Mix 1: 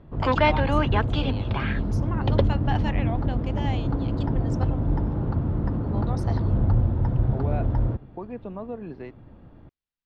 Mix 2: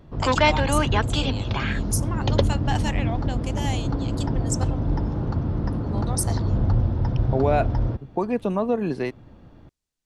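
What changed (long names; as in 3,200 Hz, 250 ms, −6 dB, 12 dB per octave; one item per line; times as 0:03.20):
second voice +11.0 dB
master: remove high-frequency loss of the air 290 metres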